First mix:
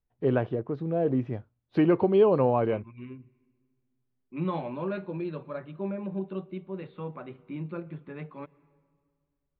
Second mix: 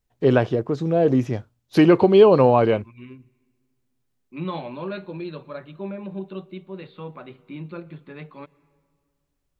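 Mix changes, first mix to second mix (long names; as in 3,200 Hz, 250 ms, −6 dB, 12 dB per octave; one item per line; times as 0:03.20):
first voice +7.0 dB
master: remove high-frequency loss of the air 400 metres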